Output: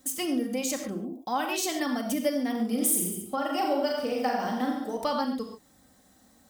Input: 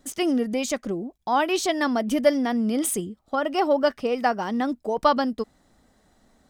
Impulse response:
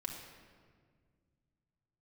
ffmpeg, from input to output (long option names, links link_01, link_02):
-filter_complex "[0:a]highpass=58,aemphasis=mode=production:type=50fm,asettb=1/sr,asplit=3[link_01][link_02][link_03];[link_01]atrim=end=2.514[link_04];[link_02]atrim=start=2.51:end=4.97,asetpts=PTS-STARTPTS,afade=type=in:duration=0.004:curve=qsin,afade=type=out:start_time=2.456:duration=0.004:curve=qsin,aecho=1:1:40|86|138.9|199.7|269.7:0.631|0.398|0.251|0.158|0.1,atrim=end_sample=108486[link_05];[link_03]atrim=start=4.966[link_06];[link_04][link_05]acrossfade=duration=0.004:curve1=hsin:curve2=qsin[link_07];[link_07][link_06]acrossfade=duration=0.004:curve1=qsin:curve2=hsin[link_08];[1:a]atrim=start_sample=2205,atrim=end_sample=6615[link_09];[link_08][link_09]afir=irnorm=-1:irlink=0,acompressor=threshold=-36dB:ratio=1.5"